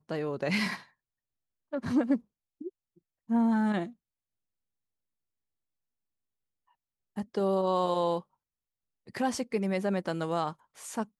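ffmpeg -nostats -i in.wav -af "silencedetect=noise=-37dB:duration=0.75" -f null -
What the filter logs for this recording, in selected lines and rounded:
silence_start: 0.77
silence_end: 1.73 | silence_duration: 0.96
silence_start: 3.87
silence_end: 7.17 | silence_duration: 3.30
silence_start: 8.20
silence_end: 9.08 | silence_duration: 0.89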